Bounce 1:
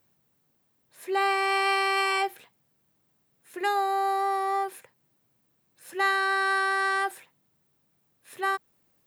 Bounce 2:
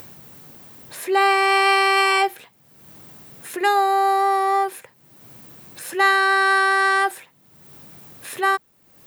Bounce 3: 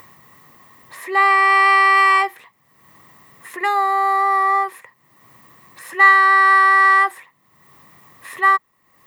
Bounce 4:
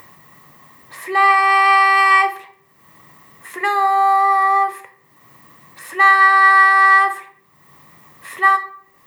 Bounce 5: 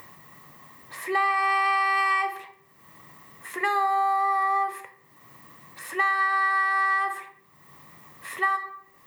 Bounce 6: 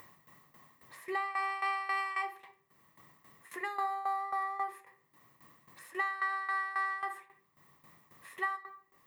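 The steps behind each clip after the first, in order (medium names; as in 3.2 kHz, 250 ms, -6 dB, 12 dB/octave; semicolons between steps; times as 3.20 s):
upward compressor, threshold -35 dBFS; trim +8 dB
small resonant body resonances 1.1/1.9 kHz, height 18 dB, ringing for 20 ms; trim -6.5 dB
simulated room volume 97 m³, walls mixed, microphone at 0.33 m; trim +1 dB
compression 6:1, threshold -18 dBFS, peak gain reduction 10.5 dB; trim -3 dB
tremolo saw down 3.7 Hz, depth 80%; trim -7.5 dB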